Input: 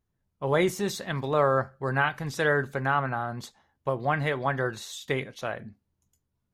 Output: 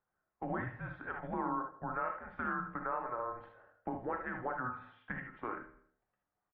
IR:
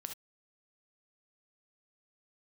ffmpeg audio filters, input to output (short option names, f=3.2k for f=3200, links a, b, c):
-filter_complex "[0:a]equalizer=f=300:t=o:w=2.9:g=-13.5,bandreject=f=71.67:t=h:w=4,bandreject=f=143.34:t=h:w=4,bandreject=f=215.01:t=h:w=4,bandreject=f=286.68:t=h:w=4,bandreject=f=358.35:t=h:w=4,bandreject=f=430.02:t=h:w=4,bandreject=f=501.69:t=h:w=4,bandreject=f=573.36:t=h:w=4,bandreject=f=645.03:t=h:w=4,bandreject=f=716.7:t=h:w=4,bandreject=f=788.37:t=h:w=4,bandreject=f=860.04:t=h:w=4,bandreject=f=931.71:t=h:w=4,acompressor=threshold=-48dB:ratio=3,aecho=1:1:81|162|243|324:0.178|0.0782|0.0344|0.0151[a];[1:a]atrim=start_sample=2205[b];[a][b]afir=irnorm=-1:irlink=0,highpass=f=290:t=q:w=0.5412,highpass=f=290:t=q:w=1.307,lowpass=f=2k:t=q:w=0.5176,lowpass=f=2k:t=q:w=0.7071,lowpass=f=2k:t=q:w=1.932,afreqshift=-250,volume=12.5dB"